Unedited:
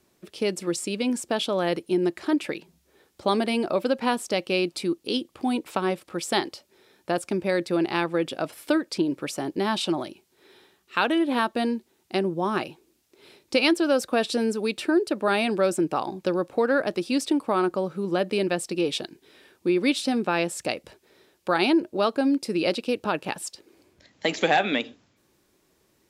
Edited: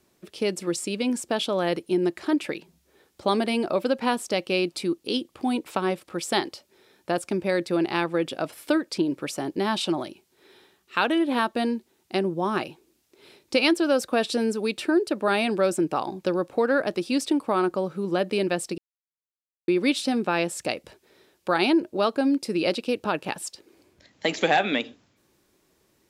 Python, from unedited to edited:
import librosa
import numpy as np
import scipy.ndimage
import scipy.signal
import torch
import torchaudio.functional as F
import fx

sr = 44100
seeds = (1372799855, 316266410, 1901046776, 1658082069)

y = fx.edit(x, sr, fx.silence(start_s=18.78, length_s=0.9), tone=tone)